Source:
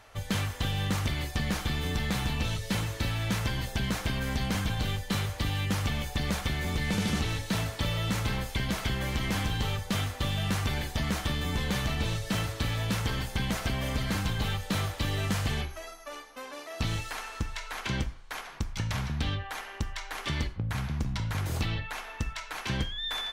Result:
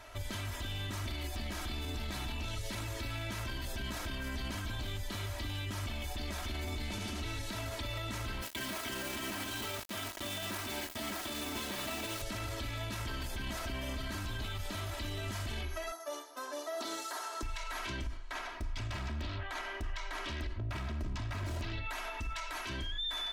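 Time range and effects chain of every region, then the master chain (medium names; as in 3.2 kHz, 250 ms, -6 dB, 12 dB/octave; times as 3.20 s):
8.42–12.22 s: high-pass 180 Hz + peaking EQ 6.2 kHz -4.5 dB 1.2 oct + word length cut 6-bit, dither none
15.92–17.43 s: high-pass 320 Hz 24 dB/octave + peaking EQ 2.5 kHz -14 dB 0.63 oct
18.17–21.73 s: peaking EQ 13 kHz -8.5 dB 1.4 oct + loudspeaker Doppler distortion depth 0.98 ms
whole clip: comb 3.1 ms, depth 96%; peak limiter -30.5 dBFS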